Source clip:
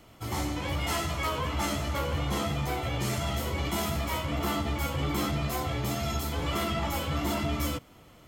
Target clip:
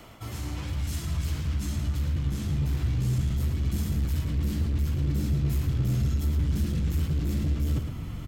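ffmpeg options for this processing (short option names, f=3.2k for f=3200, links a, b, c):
-filter_complex "[0:a]acrossover=split=370|4000[a][b][c];[b]aeval=exprs='0.0126*(abs(mod(val(0)/0.0126+3,4)-2)-1)':c=same[d];[a][d][c]amix=inputs=3:normalize=0,equalizer=f=1.4k:t=o:w=2.1:g=2,areverse,acompressor=threshold=-41dB:ratio=6,areverse,asubboost=boost=8.5:cutoff=190,asoftclip=type=tanh:threshold=-28dB,asplit=2[e][f];[f]adelay=110.8,volume=-7dB,highshelf=f=4k:g=-2.49[g];[e][g]amix=inputs=2:normalize=0,volume=6.5dB"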